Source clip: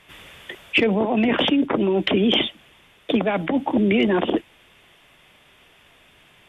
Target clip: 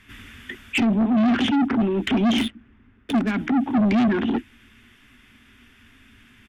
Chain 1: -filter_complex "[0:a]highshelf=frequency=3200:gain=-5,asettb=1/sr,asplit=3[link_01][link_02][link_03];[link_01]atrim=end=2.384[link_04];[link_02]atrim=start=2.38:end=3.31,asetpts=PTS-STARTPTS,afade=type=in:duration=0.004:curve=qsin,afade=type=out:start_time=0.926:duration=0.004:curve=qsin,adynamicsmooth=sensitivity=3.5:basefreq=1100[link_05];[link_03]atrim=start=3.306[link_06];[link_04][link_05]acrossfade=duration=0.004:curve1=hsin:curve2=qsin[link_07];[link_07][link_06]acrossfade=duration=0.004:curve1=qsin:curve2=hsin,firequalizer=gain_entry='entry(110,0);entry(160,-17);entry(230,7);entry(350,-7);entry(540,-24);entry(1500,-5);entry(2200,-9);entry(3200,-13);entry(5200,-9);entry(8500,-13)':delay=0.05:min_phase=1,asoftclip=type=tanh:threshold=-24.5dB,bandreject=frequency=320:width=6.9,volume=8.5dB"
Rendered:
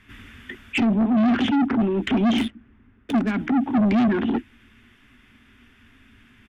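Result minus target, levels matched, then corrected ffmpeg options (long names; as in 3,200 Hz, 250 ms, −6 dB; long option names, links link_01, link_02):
8,000 Hz band −5.0 dB
-filter_complex "[0:a]highshelf=frequency=3200:gain=2,asettb=1/sr,asplit=3[link_01][link_02][link_03];[link_01]atrim=end=2.384[link_04];[link_02]atrim=start=2.38:end=3.31,asetpts=PTS-STARTPTS,afade=type=in:duration=0.004:curve=qsin,afade=type=out:start_time=0.926:duration=0.004:curve=qsin,adynamicsmooth=sensitivity=3.5:basefreq=1100[link_05];[link_03]atrim=start=3.306[link_06];[link_04][link_05]acrossfade=duration=0.004:curve1=hsin:curve2=qsin[link_07];[link_07][link_06]acrossfade=duration=0.004:curve1=qsin:curve2=hsin,firequalizer=gain_entry='entry(110,0);entry(160,-17);entry(230,7);entry(350,-7);entry(540,-24);entry(1500,-5);entry(2200,-9);entry(3200,-13);entry(5200,-9);entry(8500,-13)':delay=0.05:min_phase=1,asoftclip=type=tanh:threshold=-24.5dB,bandreject=frequency=320:width=6.9,volume=8.5dB"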